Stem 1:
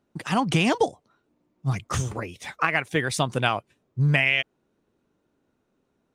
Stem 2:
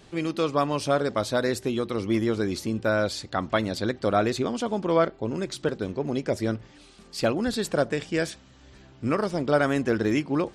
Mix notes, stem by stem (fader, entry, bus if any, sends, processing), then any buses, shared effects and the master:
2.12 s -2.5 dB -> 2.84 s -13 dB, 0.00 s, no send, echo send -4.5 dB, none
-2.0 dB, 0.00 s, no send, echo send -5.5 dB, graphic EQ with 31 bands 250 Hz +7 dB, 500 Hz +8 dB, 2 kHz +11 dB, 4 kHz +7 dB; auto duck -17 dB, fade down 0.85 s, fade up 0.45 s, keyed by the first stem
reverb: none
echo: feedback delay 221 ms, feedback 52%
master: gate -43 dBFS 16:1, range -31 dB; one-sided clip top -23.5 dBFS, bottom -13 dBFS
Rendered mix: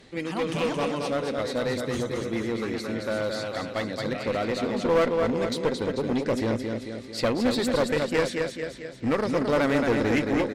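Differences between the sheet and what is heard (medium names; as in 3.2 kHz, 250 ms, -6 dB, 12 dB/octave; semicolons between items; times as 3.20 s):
stem 1 -2.5 dB -> -10.0 dB; master: missing gate -43 dBFS 16:1, range -31 dB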